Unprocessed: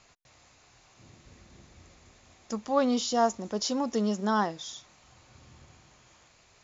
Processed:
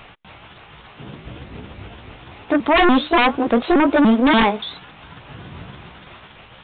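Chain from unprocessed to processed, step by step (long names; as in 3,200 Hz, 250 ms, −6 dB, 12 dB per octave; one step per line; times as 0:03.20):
pitch shifter swept by a sawtooth +6.5 semitones, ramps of 289 ms
sine wavefolder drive 14 dB, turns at −12 dBFS
downsampling to 8,000 Hz
level +2 dB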